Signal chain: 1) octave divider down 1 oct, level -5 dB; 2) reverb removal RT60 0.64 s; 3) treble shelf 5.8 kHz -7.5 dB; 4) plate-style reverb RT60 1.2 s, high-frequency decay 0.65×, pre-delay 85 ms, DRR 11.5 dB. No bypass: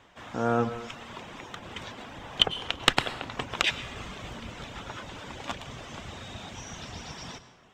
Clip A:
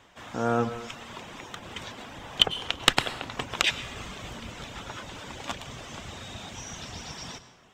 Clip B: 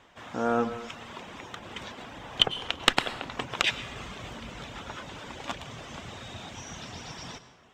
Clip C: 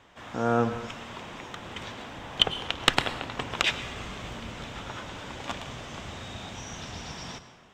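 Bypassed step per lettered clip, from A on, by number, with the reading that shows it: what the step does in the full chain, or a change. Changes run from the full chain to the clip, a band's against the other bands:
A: 3, 8 kHz band +4.5 dB; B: 1, 125 Hz band -3.5 dB; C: 2, momentary loudness spread change -2 LU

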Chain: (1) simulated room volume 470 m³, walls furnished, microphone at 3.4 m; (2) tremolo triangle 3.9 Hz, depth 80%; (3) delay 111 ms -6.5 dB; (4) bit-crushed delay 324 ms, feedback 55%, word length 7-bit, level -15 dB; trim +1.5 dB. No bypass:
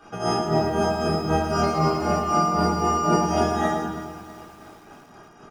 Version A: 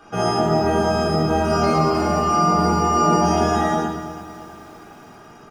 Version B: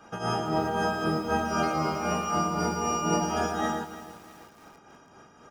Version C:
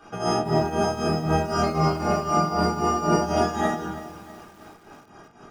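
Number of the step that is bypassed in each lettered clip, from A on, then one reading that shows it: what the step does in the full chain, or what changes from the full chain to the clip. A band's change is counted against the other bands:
2, momentary loudness spread change +3 LU; 1, momentary loudness spread change -2 LU; 3, momentary loudness spread change -1 LU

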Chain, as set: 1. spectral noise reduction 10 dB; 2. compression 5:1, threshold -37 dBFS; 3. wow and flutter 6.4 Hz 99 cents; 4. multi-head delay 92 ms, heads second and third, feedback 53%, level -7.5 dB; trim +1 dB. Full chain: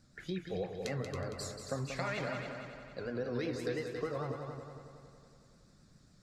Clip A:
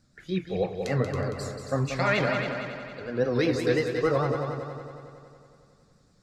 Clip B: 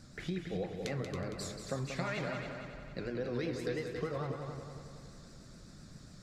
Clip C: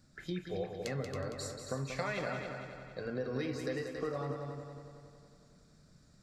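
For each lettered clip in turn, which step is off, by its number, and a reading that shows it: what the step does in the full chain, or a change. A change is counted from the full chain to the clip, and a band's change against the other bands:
2, mean gain reduction 8.0 dB; 1, 125 Hz band +1.5 dB; 3, momentary loudness spread change -1 LU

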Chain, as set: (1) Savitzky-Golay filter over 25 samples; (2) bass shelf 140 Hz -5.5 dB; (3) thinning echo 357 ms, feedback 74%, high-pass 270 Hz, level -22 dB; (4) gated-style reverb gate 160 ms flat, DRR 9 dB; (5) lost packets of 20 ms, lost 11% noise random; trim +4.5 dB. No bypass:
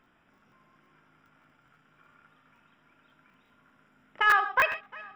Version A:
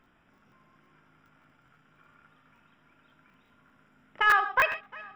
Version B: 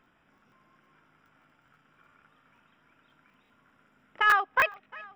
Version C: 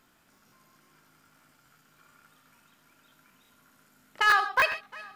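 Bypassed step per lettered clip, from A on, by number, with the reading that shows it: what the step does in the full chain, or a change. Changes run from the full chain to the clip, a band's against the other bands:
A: 2, 125 Hz band +1.5 dB; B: 4, momentary loudness spread change -3 LU; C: 1, 8 kHz band +6.0 dB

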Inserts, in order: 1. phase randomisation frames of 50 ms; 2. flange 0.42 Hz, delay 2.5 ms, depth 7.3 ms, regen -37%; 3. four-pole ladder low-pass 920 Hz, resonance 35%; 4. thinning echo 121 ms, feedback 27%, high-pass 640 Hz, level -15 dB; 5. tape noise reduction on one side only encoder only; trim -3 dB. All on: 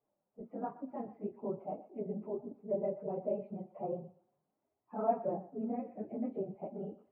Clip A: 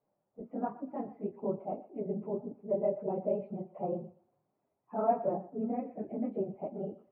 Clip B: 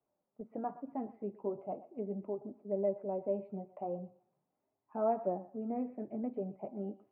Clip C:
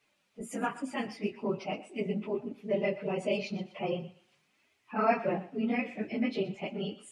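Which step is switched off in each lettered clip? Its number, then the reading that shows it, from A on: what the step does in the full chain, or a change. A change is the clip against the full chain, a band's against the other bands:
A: 2, loudness change +3.5 LU; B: 1, crest factor change -3.0 dB; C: 3, 500 Hz band -2.5 dB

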